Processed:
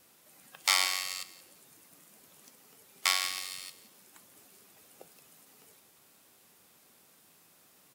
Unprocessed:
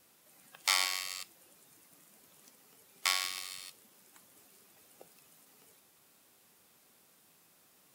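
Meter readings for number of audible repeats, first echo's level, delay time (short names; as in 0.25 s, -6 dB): 2, -17.0 dB, 0.176 s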